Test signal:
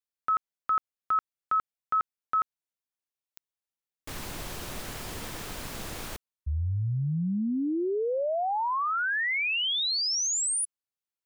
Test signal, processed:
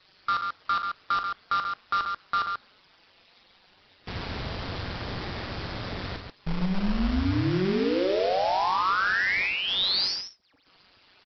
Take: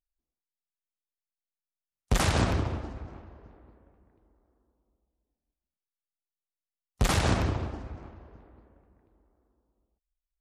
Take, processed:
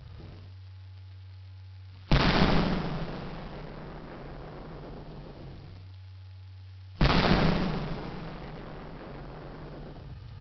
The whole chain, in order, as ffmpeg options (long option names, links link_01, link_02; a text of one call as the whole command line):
ffmpeg -i in.wav -af "aeval=exprs='val(0)+0.5*0.0133*sgn(val(0))':channel_layout=same,afftdn=noise_reduction=16:noise_floor=-50,adynamicequalizer=threshold=0.00224:dfrequency=2800:dqfactor=4.4:tfrequency=2800:tqfactor=4.4:attack=5:release=100:ratio=0.438:range=2.5:mode=cutabove:tftype=bell,acontrast=21,aeval=exprs='val(0)*sin(2*PI*94*n/s)':channel_layout=same,aresample=11025,acrusher=bits=2:mode=log:mix=0:aa=0.000001,aresample=44100,aecho=1:1:43.73|137:0.355|0.501,volume=-2dB" out.wav